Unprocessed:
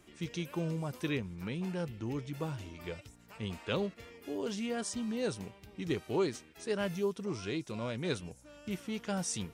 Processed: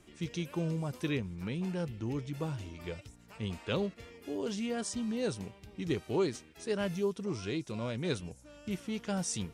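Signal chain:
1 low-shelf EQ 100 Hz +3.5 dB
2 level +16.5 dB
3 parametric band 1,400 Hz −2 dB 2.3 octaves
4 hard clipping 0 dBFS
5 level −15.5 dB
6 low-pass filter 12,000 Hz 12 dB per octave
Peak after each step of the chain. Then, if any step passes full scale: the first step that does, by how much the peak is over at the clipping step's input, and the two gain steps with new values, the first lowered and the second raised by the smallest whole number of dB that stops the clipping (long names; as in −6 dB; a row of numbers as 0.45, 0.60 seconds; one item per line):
−20.0, −3.5, −4.5, −4.5, −20.0, −20.0 dBFS
no step passes full scale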